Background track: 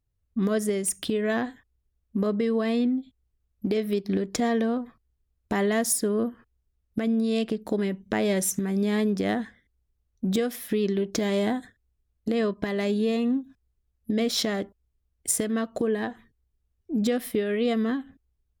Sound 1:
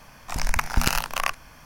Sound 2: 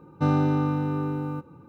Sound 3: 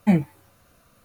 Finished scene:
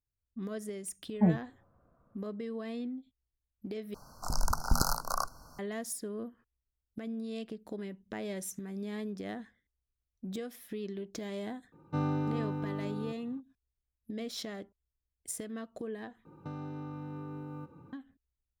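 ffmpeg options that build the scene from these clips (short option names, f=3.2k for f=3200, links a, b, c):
-filter_complex "[2:a]asplit=2[a][b];[0:a]volume=-14dB[c];[3:a]lowpass=f=1.2k:w=0.5412,lowpass=f=1.2k:w=1.3066[d];[1:a]asuperstop=centerf=2500:order=20:qfactor=0.93[e];[b]acompressor=threshold=-33dB:ratio=6:attack=3.2:release=140:knee=1:detection=peak[f];[c]asplit=3[g][h][i];[g]atrim=end=3.944[j];[e]atrim=end=1.65,asetpts=PTS-STARTPTS,volume=-5dB[k];[h]atrim=start=5.586:end=16.254[l];[f]atrim=end=1.68,asetpts=PTS-STARTPTS,volume=-5.5dB[m];[i]atrim=start=17.926[n];[d]atrim=end=1.04,asetpts=PTS-STARTPTS,volume=-7dB,afade=t=in:d=0.004:c=hsin,afade=t=out:st=1.036:d=0.004:c=hsin,adelay=1140[o];[a]atrim=end=1.68,asetpts=PTS-STARTPTS,volume=-9.5dB,afade=t=in:d=0.004:c=hsin,afade=t=out:st=1.676:d=0.004:c=hsin,adelay=11720[p];[j][k]acrossfade=d=0.004:c1=hsin:c2=hsin[q];[q][l]acrossfade=d=0.004:c1=hsin:c2=hsin[r];[r][m]acrossfade=d=0.004:c1=hsin:c2=hsin[s];[s][n]acrossfade=d=0.004:c1=hsin:c2=hsin[t];[t][o][p]amix=inputs=3:normalize=0"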